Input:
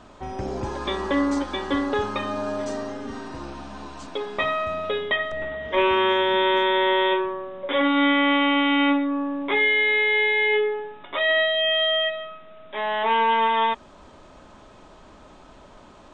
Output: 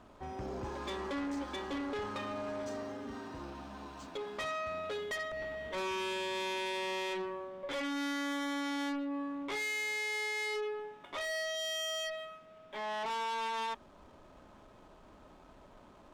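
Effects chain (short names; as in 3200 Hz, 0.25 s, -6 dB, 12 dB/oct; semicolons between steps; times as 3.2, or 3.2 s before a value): tube stage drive 26 dB, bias 0.25; backlash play -52.5 dBFS; gain -8 dB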